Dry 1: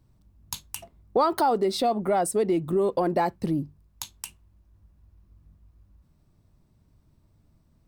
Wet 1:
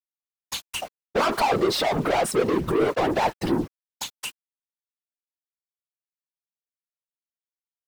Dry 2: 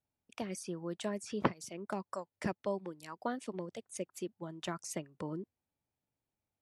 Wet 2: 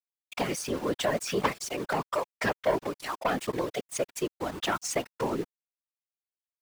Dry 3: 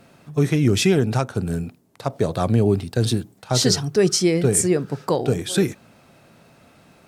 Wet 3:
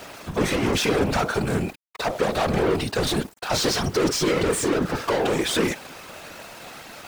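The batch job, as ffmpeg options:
-filter_complex "[0:a]asplit=2[link_01][link_02];[link_02]highpass=frequency=720:poles=1,volume=35dB,asoftclip=type=tanh:threshold=-4dB[link_03];[link_01][link_03]amix=inputs=2:normalize=0,lowpass=frequency=3800:poles=1,volume=-6dB,aeval=exprs='val(0)*gte(abs(val(0)),0.0447)':channel_layout=same,afftfilt=real='hypot(re,im)*cos(2*PI*random(0))':imag='hypot(re,im)*sin(2*PI*random(1))':win_size=512:overlap=0.75,volume=-4.5dB"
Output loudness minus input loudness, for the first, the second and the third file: +1.5, +9.5, −2.5 LU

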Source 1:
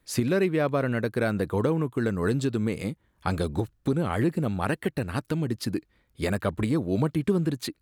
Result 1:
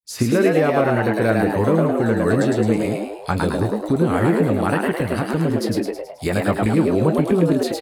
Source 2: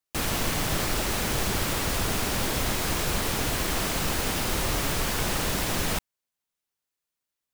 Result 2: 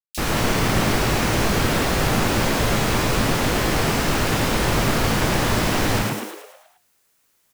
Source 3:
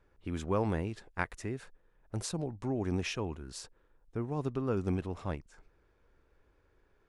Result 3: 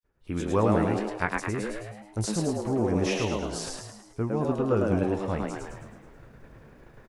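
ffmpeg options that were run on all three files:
-filter_complex "[0:a]agate=range=-33dB:threshold=-56dB:ratio=3:detection=peak,acrossover=split=3500[link_01][link_02];[link_01]adelay=30[link_03];[link_03][link_02]amix=inputs=2:normalize=0,areverse,acompressor=mode=upward:threshold=-37dB:ratio=2.5,areverse,asplit=2[link_04][link_05];[link_05]adelay=18,volume=-11dB[link_06];[link_04][link_06]amix=inputs=2:normalize=0,asplit=2[link_07][link_08];[link_08]asplit=7[link_09][link_10][link_11][link_12][link_13][link_14][link_15];[link_09]adelay=107,afreqshift=100,volume=-3dB[link_16];[link_10]adelay=214,afreqshift=200,volume=-8.8dB[link_17];[link_11]adelay=321,afreqshift=300,volume=-14.7dB[link_18];[link_12]adelay=428,afreqshift=400,volume=-20.5dB[link_19];[link_13]adelay=535,afreqshift=500,volume=-26.4dB[link_20];[link_14]adelay=642,afreqshift=600,volume=-32.2dB[link_21];[link_15]adelay=749,afreqshift=700,volume=-38.1dB[link_22];[link_16][link_17][link_18][link_19][link_20][link_21][link_22]amix=inputs=7:normalize=0[link_23];[link_07][link_23]amix=inputs=2:normalize=0,acrossover=split=5600[link_24][link_25];[link_25]acompressor=threshold=-37dB:ratio=4:attack=1:release=60[link_26];[link_24][link_26]amix=inputs=2:normalize=0,volume=5.5dB"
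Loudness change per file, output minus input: +8.0, +6.0, +8.0 LU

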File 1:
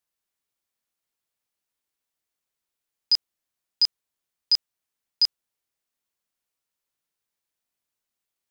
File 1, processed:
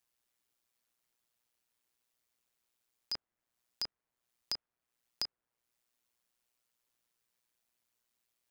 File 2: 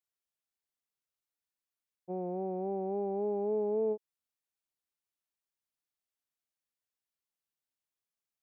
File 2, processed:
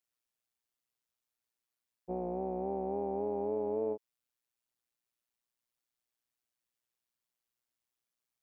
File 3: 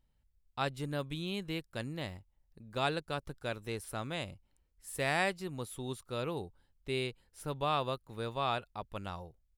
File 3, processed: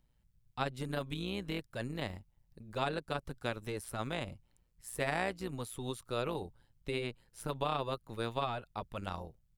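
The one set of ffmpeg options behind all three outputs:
-filter_complex "[0:a]acrossover=split=590|2100[link_01][link_02][link_03];[link_01]acompressor=threshold=-38dB:ratio=4[link_04];[link_02]acompressor=threshold=-36dB:ratio=4[link_05];[link_03]acompressor=threshold=-46dB:ratio=4[link_06];[link_04][link_05][link_06]amix=inputs=3:normalize=0,tremolo=f=120:d=0.667,volume=5dB"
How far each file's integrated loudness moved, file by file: −17.0, −1.5, −1.5 LU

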